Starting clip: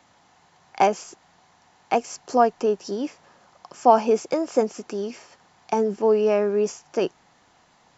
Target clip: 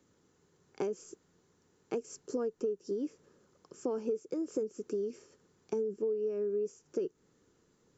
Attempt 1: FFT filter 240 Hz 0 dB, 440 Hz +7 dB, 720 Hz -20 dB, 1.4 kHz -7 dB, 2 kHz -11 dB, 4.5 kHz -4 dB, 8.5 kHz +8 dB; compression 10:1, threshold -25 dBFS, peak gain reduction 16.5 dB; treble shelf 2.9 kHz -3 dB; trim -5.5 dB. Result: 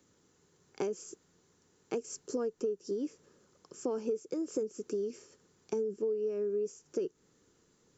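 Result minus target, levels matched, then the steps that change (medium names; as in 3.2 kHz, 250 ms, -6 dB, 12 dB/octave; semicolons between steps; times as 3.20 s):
8 kHz band +5.0 dB
change: treble shelf 2.9 kHz -9 dB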